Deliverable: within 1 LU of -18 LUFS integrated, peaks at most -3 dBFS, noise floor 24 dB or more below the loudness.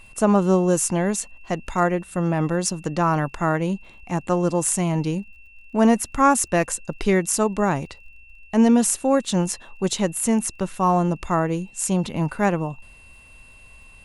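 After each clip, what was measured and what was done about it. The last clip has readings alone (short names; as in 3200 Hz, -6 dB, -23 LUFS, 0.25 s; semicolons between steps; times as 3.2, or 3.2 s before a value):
ticks 42/s; steady tone 2700 Hz; tone level -48 dBFS; loudness -22.0 LUFS; peak -4.5 dBFS; loudness target -18.0 LUFS
-> de-click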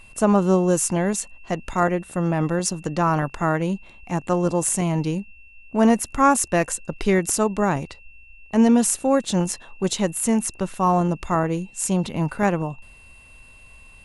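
ticks 0.14/s; steady tone 2700 Hz; tone level -48 dBFS
-> notch 2700 Hz, Q 30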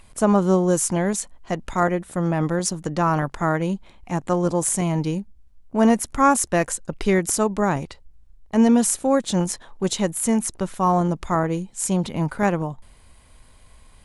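steady tone none; loudness -22.0 LUFS; peak -4.5 dBFS; loudness target -18.0 LUFS
-> gain +4 dB; limiter -3 dBFS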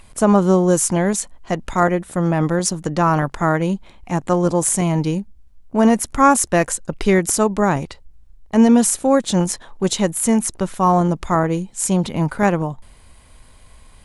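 loudness -18.0 LUFS; peak -3.0 dBFS; noise floor -47 dBFS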